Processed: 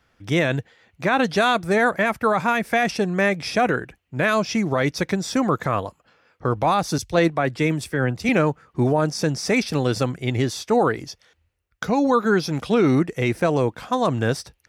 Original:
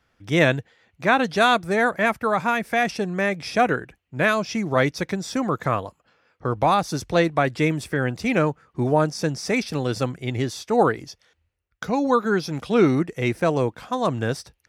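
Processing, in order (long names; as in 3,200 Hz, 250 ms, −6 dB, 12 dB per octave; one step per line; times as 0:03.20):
brickwall limiter −13 dBFS, peak gain reduction 9 dB
0:06.98–0:08.29: multiband upward and downward expander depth 100%
level +3.5 dB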